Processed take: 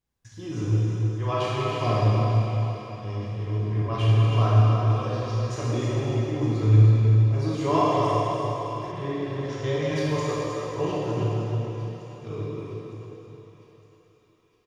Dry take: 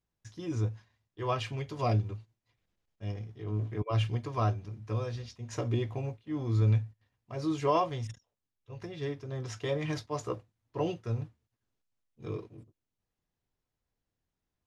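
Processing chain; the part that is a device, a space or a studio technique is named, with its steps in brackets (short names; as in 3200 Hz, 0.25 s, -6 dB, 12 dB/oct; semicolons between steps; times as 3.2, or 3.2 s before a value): cave (echo 0.318 s -8.5 dB; reverb RT60 3.7 s, pre-delay 22 ms, DRR -7 dB); 8.91–9.94 LPF 2900 Hz -> 5900 Hz 12 dB/oct; thinning echo 0.91 s, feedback 48%, high-pass 1000 Hz, level -14.5 dB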